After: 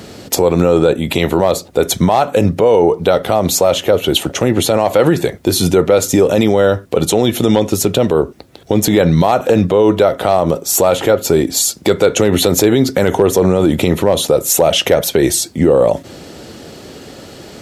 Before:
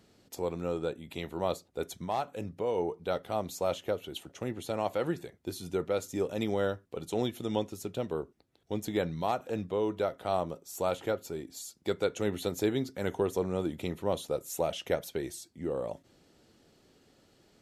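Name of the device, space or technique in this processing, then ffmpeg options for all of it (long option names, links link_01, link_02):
mastering chain: -af "highpass=frequency=47:width=0.5412,highpass=frequency=47:width=1.3066,equalizer=frequency=560:width_type=o:width=0.65:gain=2.5,acompressor=threshold=-37dB:ratio=1.5,asoftclip=type=hard:threshold=-22.5dB,alimiter=level_in=30dB:limit=-1dB:release=50:level=0:latency=1,volume=-1dB"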